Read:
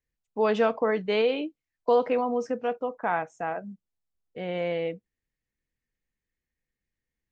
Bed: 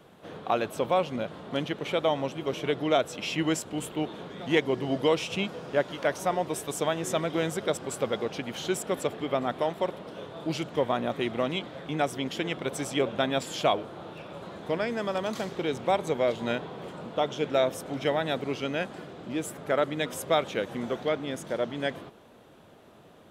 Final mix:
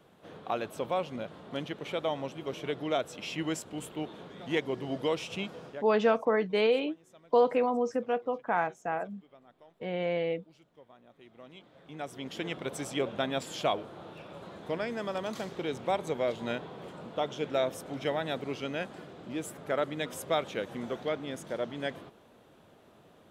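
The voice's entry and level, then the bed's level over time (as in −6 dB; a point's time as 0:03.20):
5.45 s, −1.5 dB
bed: 0:05.67 −6 dB
0:05.92 −29.5 dB
0:11.05 −29.5 dB
0:12.45 −4.5 dB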